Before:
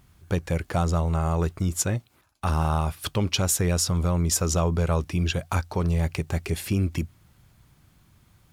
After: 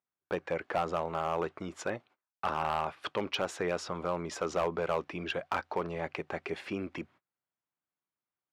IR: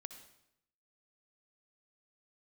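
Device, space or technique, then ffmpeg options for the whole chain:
walkie-talkie: -af "highpass=420,lowpass=2200,asoftclip=type=hard:threshold=-22.5dB,agate=range=-29dB:threshold=-56dB:ratio=16:detection=peak"

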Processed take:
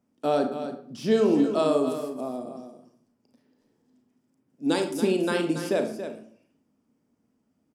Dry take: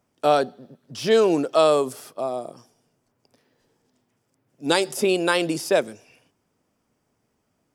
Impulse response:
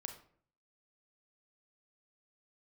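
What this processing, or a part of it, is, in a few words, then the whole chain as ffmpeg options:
bathroom: -filter_complex "[0:a]equalizer=frequency=240:width_type=o:width=1:gain=15,aecho=1:1:280:0.316[link_01];[1:a]atrim=start_sample=2205[link_02];[link_01][link_02]afir=irnorm=-1:irlink=0,volume=-5.5dB"

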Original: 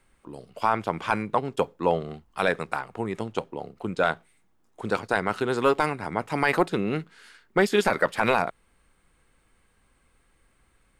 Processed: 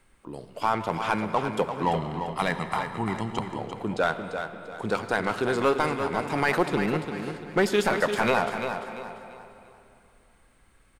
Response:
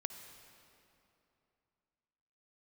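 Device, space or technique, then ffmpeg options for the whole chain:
saturated reverb return: -filter_complex "[0:a]asplit=2[link_01][link_02];[1:a]atrim=start_sample=2205[link_03];[link_02][link_03]afir=irnorm=-1:irlink=0,asoftclip=type=tanh:threshold=-29.5dB,volume=3dB[link_04];[link_01][link_04]amix=inputs=2:normalize=0,asettb=1/sr,asplit=3[link_05][link_06][link_07];[link_05]atrim=end=1.824[link_08];[link_06]atrim=start=1.82:end=3.59,asetpts=PTS-STARTPTS,afade=type=in:duration=0.004:curve=qsin,afade=type=out:start_time=1.766:duration=0.004:curve=qsin,aecho=1:1:1:0.63,atrim=end_sample=78057[link_09];[link_07]atrim=start=3.586[link_10];[link_08][link_09]acrossfade=duration=0.004:curve1=hsin:curve2=qsin[link_11];[link_11][link_10]acrossfade=duration=0.004:curve1=qsin:curve2=hsin,aecho=1:1:344|688|1032|1376:0.398|0.135|0.046|0.0156,volume=-4dB"

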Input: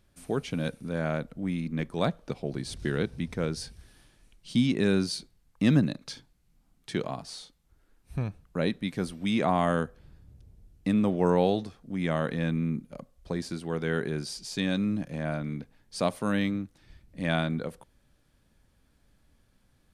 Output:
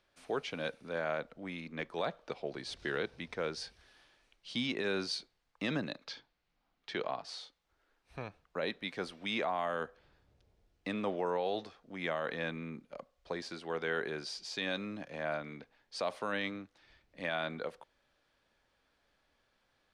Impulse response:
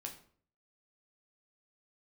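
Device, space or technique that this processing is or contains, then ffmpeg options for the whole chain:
DJ mixer with the lows and highs turned down: -filter_complex "[0:a]asettb=1/sr,asplit=3[link_01][link_02][link_03];[link_01]atrim=end=6.054[link_04];[link_02]atrim=start=6.05:end=7.24,asetpts=PTS-STARTPTS,afade=type=in:duration=0.004:curve=qsin,afade=type=out:start_time=1.186:duration=0.004:curve=qsin,lowpass=5200[link_05];[link_03]atrim=start=7.236[link_06];[link_04][link_05]acrossfade=duration=0.004:curve1=hsin:curve2=qsin[link_07];[link_07][link_06]acrossfade=duration=0.004:curve1=qsin:curve2=hsin,acrossover=split=410 5700:gain=0.126 1 0.112[link_08][link_09][link_10];[link_08][link_09][link_10]amix=inputs=3:normalize=0,alimiter=limit=-24dB:level=0:latency=1:release=25"

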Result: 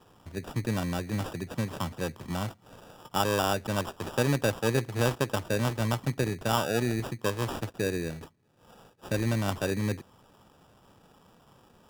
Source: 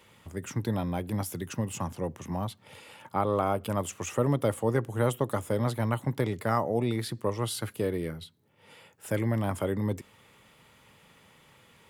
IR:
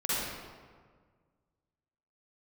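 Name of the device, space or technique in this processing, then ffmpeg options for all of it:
crushed at another speed: -af "asetrate=35280,aresample=44100,acrusher=samples=26:mix=1:aa=0.000001,asetrate=55125,aresample=44100"

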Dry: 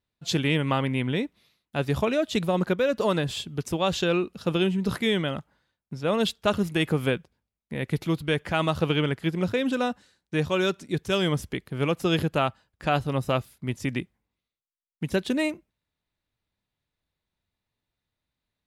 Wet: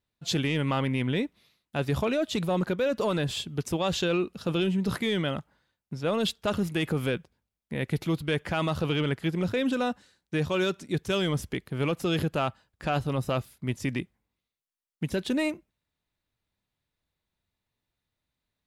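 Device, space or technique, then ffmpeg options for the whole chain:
soft clipper into limiter: -af "asoftclip=type=tanh:threshold=-13dB,alimiter=limit=-18.5dB:level=0:latency=1:release=12"

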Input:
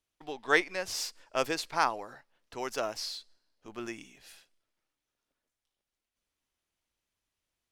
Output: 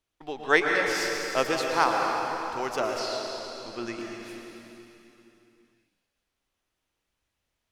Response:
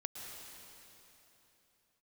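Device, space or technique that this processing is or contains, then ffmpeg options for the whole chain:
swimming-pool hall: -filter_complex "[1:a]atrim=start_sample=2205[link_01];[0:a][link_01]afir=irnorm=-1:irlink=0,highshelf=frequency=4200:gain=-6,asettb=1/sr,asplit=3[link_02][link_03][link_04];[link_02]atrim=end=2.994[link_05];[link_03]atrim=start=2.99:end=3.99,asetpts=PTS-STARTPTS,afade=type=in:duration=0.004:curve=qsin,afade=type=out:start_time=0.996:duration=0.004:curve=qsin,lowpass=9800[link_06];[link_04]atrim=start=3.986[link_07];[link_05][link_06]acrossfade=duration=0.004:curve1=hsin:curve2=qsin[link_08];[link_08][link_07]acrossfade=duration=0.004:curve1=qsin:curve2=hsin,volume=8dB"

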